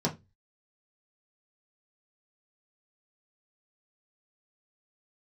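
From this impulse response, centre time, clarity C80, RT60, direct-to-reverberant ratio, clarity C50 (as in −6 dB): 13 ms, 25.0 dB, 0.20 s, −3.5 dB, 16.0 dB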